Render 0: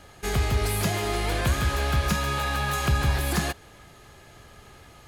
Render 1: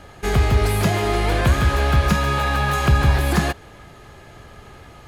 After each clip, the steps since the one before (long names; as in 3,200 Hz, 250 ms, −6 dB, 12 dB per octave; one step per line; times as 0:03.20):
high-shelf EQ 3,400 Hz −8.5 dB
level +7.5 dB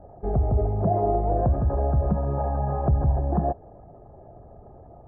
spectral envelope exaggerated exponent 1.5
transistor ladder low-pass 780 Hz, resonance 60%
level +5 dB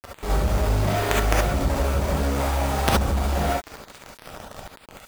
log-companded quantiser 2 bits
reverb whose tail is shaped and stops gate 90 ms rising, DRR −3.5 dB
level −2.5 dB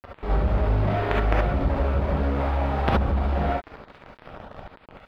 high-frequency loss of the air 390 metres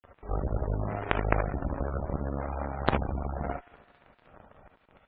delay with a high-pass on its return 75 ms, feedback 76%, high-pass 1,500 Hz, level −11 dB
harmonic generator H 3 −20 dB, 4 −21 dB, 7 −23 dB, 8 −32 dB, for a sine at −2 dBFS
gate on every frequency bin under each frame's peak −25 dB strong